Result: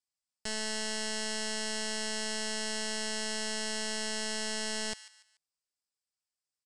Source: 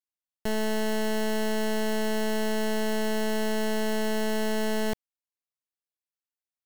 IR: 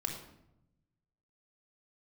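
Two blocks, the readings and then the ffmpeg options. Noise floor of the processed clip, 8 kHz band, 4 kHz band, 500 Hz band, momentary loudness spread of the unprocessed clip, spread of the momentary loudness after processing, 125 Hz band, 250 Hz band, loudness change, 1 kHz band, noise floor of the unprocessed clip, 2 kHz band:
under -85 dBFS, +4.5 dB, +2.5 dB, -12.0 dB, 2 LU, 2 LU, n/a, -13.0 dB, -5.0 dB, -9.0 dB, under -85 dBFS, -3.0 dB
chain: -filter_complex "[0:a]equalizer=f=315:t=o:w=0.33:g=-9,equalizer=f=5k:t=o:w=0.33:g=11,equalizer=f=8k:t=o:w=0.33:g=9,acrossover=split=1300[a][b];[a]alimiter=level_in=11dB:limit=-24dB:level=0:latency=1,volume=-11dB[c];[b]aecho=1:1:145|290|435:0.188|0.064|0.0218[d];[c][d]amix=inputs=2:normalize=0,aresample=22050,aresample=44100,volume=-1.5dB"

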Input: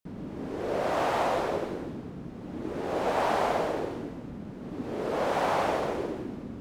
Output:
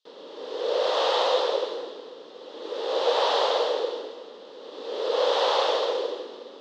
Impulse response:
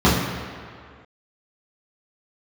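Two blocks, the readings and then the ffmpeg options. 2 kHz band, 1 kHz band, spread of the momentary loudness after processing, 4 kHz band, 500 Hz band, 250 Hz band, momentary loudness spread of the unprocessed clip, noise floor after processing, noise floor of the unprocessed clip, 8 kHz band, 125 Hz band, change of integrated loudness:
+0.5 dB, +1.5 dB, 20 LU, +14.5 dB, +5.0 dB, -9.5 dB, 13 LU, -45 dBFS, -42 dBFS, +2.5 dB, under -30 dB, +5.0 dB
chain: -filter_complex "[0:a]highpass=f=480:w=0.5412,highpass=f=480:w=1.3066,equalizer=f=490:t=q:w=4:g=9,equalizer=f=700:t=q:w=4:g=-8,equalizer=f=1.5k:t=q:w=4:g=-5,equalizer=f=2.3k:t=q:w=4:g=-7,equalizer=f=3.5k:t=q:w=4:g=3,lowpass=f=4.1k:w=0.5412,lowpass=f=4.1k:w=1.3066,asplit=2[a][b];[1:a]atrim=start_sample=2205,adelay=129[c];[b][c]afir=irnorm=-1:irlink=0,volume=-40dB[d];[a][d]amix=inputs=2:normalize=0,aexciter=amount=4.5:drive=6.7:freq=3.2k,volume=4.5dB"

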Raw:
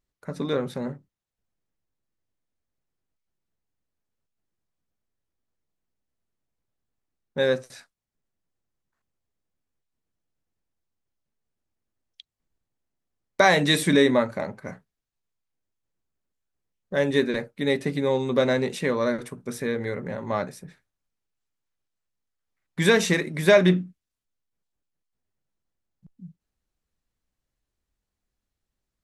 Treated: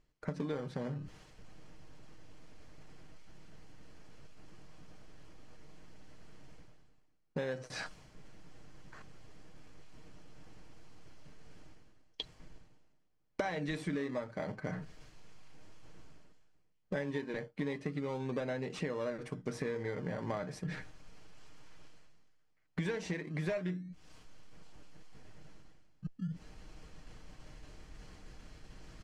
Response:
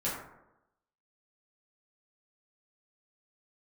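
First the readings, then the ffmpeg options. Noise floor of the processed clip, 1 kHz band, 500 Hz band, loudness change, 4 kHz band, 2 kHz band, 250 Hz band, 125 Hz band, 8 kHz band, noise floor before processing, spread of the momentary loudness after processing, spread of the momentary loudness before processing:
-69 dBFS, -15.5 dB, -15.5 dB, -16.0 dB, -18.5 dB, -16.5 dB, -13.0 dB, -10.0 dB, -18.0 dB, -85 dBFS, 19 LU, 17 LU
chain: -filter_complex "[0:a]asplit=2[a][b];[b]acrusher=samples=26:mix=1:aa=0.000001:lfo=1:lforange=15.6:lforate=0.36,volume=-11dB[c];[a][c]amix=inputs=2:normalize=0,aecho=1:1:6.5:0.38,areverse,acompressor=mode=upward:threshold=-28dB:ratio=2.5,areverse,bandreject=f=3.7k:w=10,acompressor=threshold=-35dB:ratio=10,lowpass=5.3k,volume=1dB"

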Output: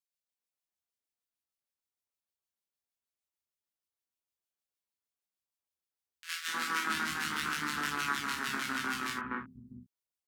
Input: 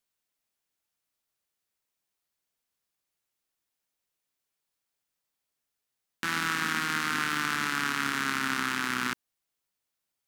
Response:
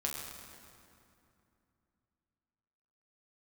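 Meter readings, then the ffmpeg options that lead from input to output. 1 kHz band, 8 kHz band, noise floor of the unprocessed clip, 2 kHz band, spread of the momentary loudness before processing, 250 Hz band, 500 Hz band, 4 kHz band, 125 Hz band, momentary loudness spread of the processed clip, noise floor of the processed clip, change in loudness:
-4.0 dB, -3.5 dB, -85 dBFS, -5.0 dB, 4 LU, -5.5 dB, -4.0 dB, -4.0 dB, -6.5 dB, 12 LU, under -85 dBFS, -5.0 dB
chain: -filter_complex "[0:a]tremolo=f=6.5:d=0.54,agate=range=-9dB:threshold=-31dB:ratio=16:detection=peak,acrossover=split=200|1800[a][b][c];[b]adelay=250[d];[a]adelay=650[e];[e][d][c]amix=inputs=3:normalize=0[f];[1:a]atrim=start_sample=2205,atrim=end_sample=3969[g];[f][g]afir=irnorm=-1:irlink=0"

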